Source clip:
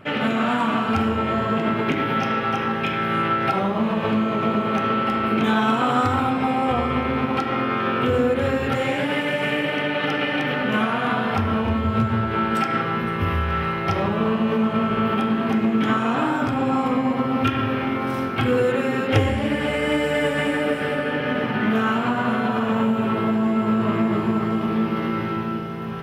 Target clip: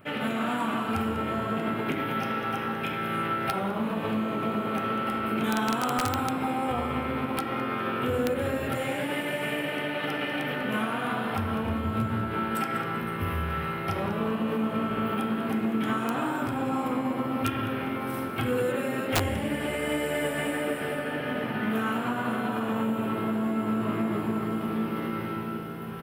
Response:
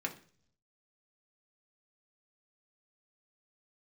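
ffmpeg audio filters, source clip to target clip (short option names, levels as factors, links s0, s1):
-filter_complex "[0:a]asplit=4[s0][s1][s2][s3];[s1]adelay=195,afreqshift=73,volume=0.237[s4];[s2]adelay=390,afreqshift=146,volume=0.0804[s5];[s3]adelay=585,afreqshift=219,volume=0.0275[s6];[s0][s4][s5][s6]amix=inputs=4:normalize=0,aexciter=amount=4.8:drive=5.2:freq=8300,aeval=exprs='(mod(2.82*val(0)+1,2)-1)/2.82':c=same,volume=0.422"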